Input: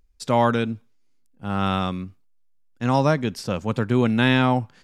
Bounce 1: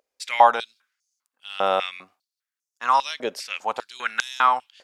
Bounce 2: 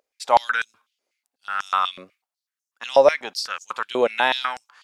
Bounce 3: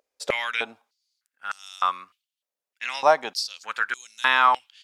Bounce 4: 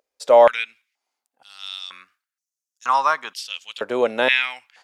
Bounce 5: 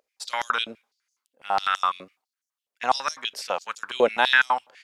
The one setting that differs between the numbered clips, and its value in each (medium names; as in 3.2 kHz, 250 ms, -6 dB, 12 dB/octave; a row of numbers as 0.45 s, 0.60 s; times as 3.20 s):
step-sequenced high-pass, rate: 5 Hz, 8.1 Hz, 3.3 Hz, 2.1 Hz, 12 Hz